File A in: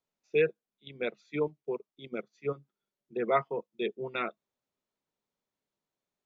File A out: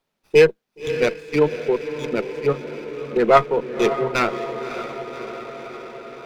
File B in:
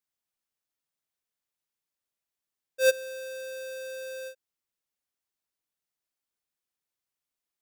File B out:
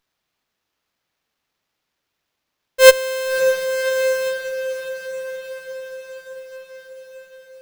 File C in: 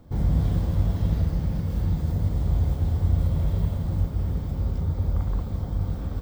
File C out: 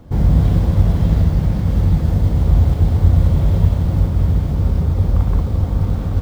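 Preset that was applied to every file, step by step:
on a send: echo that smears into a reverb 571 ms, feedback 68%, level -10.5 dB; on the sum: sliding maximum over 5 samples; peak normalisation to -1.5 dBFS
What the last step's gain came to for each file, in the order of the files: +13.0 dB, +14.0 dB, +9.0 dB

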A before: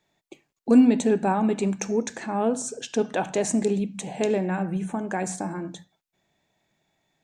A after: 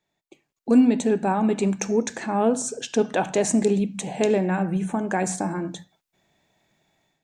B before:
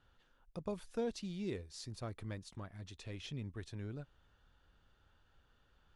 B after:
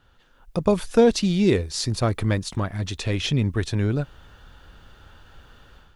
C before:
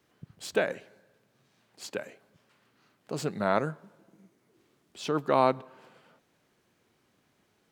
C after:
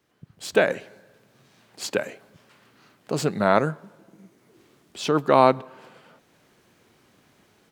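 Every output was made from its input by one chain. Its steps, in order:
level rider gain up to 11 dB; normalise loudness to -23 LUFS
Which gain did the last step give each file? -6.0 dB, +10.5 dB, -0.5 dB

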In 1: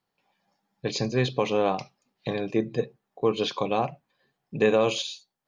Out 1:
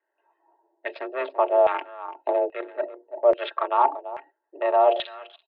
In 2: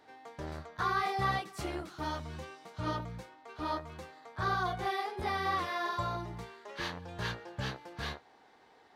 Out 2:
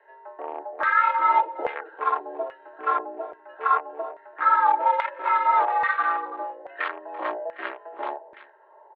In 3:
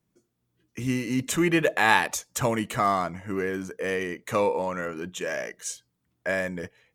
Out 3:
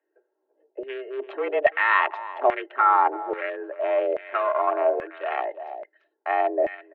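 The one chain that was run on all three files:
local Wiener filter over 41 samples; comb 4.1 ms, depth 47%; reverse; compression 4:1, threshold -35 dBFS; reverse; mistuned SSB +140 Hz 180–3400 Hz; delay 338 ms -15 dB; LFO band-pass saw down 1.2 Hz 650–1900 Hz; normalise loudness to -24 LUFS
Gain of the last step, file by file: +21.0 dB, +21.5 dB, +20.5 dB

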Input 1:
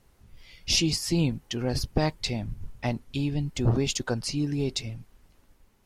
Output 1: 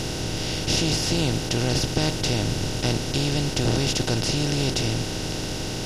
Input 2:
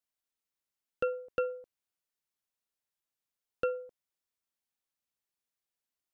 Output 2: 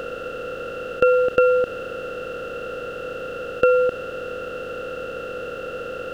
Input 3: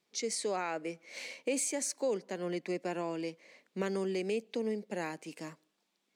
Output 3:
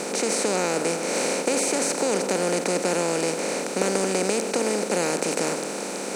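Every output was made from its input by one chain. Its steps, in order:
spectral levelling over time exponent 0.2; normalise loudness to -24 LUFS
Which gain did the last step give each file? -4.5 dB, +13.0 dB, +3.0 dB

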